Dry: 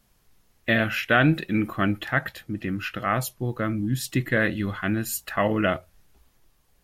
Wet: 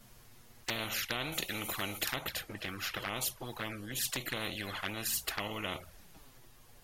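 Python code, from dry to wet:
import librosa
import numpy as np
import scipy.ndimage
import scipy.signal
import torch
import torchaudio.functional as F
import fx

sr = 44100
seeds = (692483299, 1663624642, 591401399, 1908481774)

y = fx.high_shelf(x, sr, hz=2000.0, db=10.0, at=(1.32, 2.16))
y = fx.env_flanger(y, sr, rest_ms=8.8, full_db=-21.0)
y = fx.spectral_comp(y, sr, ratio=4.0)
y = y * librosa.db_to_amplitude(-7.5)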